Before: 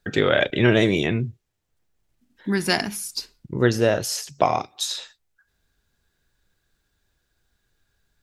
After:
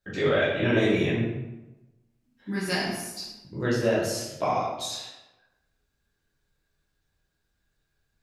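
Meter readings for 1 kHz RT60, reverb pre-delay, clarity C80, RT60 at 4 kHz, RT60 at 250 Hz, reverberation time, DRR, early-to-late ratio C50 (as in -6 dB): 1.0 s, 8 ms, 4.5 dB, 0.65 s, 1.2 s, 1.0 s, -9.0 dB, 1.5 dB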